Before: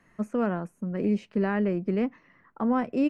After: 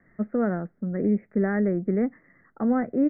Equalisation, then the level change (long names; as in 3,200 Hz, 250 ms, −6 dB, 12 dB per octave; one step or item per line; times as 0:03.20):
Butterworth low-pass 2,100 Hz 96 dB per octave
parametric band 1,000 Hz −14.5 dB 0.35 octaves
+2.5 dB